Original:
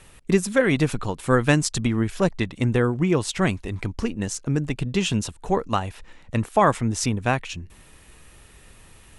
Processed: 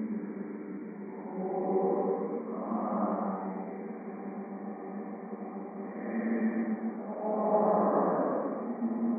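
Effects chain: brick-wall FIR band-pass 180–2400 Hz; low shelf 230 Hz +3.5 dB; treble ducked by the level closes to 700 Hz, closed at -18.5 dBFS; on a send: swelling echo 0.113 s, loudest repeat 5, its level -16.5 dB; on the sum: Paulstretch 5.5×, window 0.25 s, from 5.2; gain -7.5 dB

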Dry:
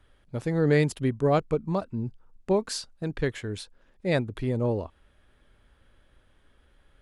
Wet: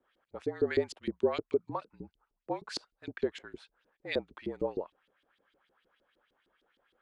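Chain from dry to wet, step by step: frequency shift -45 Hz; LFO band-pass saw up 6.5 Hz 310–4600 Hz; gain +1.5 dB

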